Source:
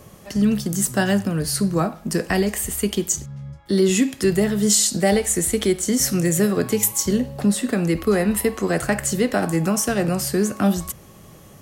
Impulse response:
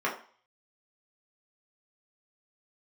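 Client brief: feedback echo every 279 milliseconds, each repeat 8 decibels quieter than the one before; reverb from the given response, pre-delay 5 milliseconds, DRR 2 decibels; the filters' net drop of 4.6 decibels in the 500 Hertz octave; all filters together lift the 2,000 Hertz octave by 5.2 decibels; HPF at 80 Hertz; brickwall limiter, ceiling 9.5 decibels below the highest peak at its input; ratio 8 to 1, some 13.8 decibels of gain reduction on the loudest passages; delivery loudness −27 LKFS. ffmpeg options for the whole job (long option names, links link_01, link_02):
-filter_complex "[0:a]highpass=80,equalizer=frequency=500:width_type=o:gain=-6.5,equalizer=frequency=2000:width_type=o:gain=6.5,acompressor=threshold=-29dB:ratio=8,alimiter=limit=-23.5dB:level=0:latency=1,aecho=1:1:279|558|837|1116|1395:0.398|0.159|0.0637|0.0255|0.0102,asplit=2[link_01][link_02];[1:a]atrim=start_sample=2205,adelay=5[link_03];[link_02][link_03]afir=irnorm=-1:irlink=0,volume=-12.5dB[link_04];[link_01][link_04]amix=inputs=2:normalize=0,volume=4.5dB"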